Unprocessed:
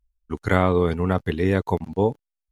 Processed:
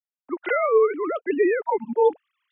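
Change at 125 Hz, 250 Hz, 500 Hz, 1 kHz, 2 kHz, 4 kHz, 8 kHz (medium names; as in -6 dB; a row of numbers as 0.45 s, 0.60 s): under -30 dB, -5.0 dB, +3.0 dB, +1.0 dB, +0.5 dB, under -10 dB, no reading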